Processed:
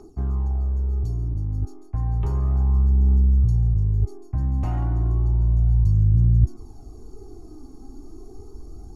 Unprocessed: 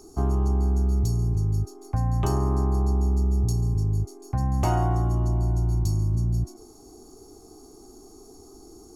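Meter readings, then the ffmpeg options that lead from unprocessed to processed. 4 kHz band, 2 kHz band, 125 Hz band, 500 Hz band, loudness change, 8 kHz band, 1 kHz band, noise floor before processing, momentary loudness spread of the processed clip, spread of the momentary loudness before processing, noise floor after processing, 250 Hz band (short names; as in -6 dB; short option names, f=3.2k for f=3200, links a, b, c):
under -10 dB, n/a, +3.0 dB, -8.0 dB, +3.0 dB, under -15 dB, -9.5 dB, -49 dBFS, 9 LU, 5 LU, -43 dBFS, -2.5 dB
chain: -filter_complex "[0:a]bass=f=250:g=3,treble=f=4k:g=-12,aeval=exprs='0.316*(cos(1*acos(clip(val(0)/0.316,-1,1)))-cos(1*PI/2))+0.0141*(cos(7*acos(clip(val(0)/0.316,-1,1)))-cos(7*PI/2))':c=same,areverse,acompressor=threshold=-27dB:ratio=16,areverse,aphaser=in_gain=1:out_gain=1:delay=3.9:decay=0.47:speed=0.32:type=triangular,asplit=2[a][b];[b]volume=32dB,asoftclip=hard,volume=-32dB,volume=-7.5dB[c];[a][c]amix=inputs=2:normalize=0,asubboost=boost=2.5:cutoff=250"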